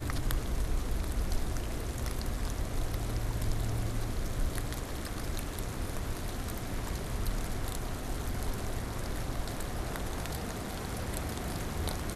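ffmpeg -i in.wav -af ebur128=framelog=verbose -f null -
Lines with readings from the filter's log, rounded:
Integrated loudness:
  I:         -36.6 LUFS
  Threshold: -46.6 LUFS
Loudness range:
  LRA:         1.6 LU
  Threshold: -56.8 LUFS
  LRA low:   -37.5 LUFS
  LRA high:  -35.9 LUFS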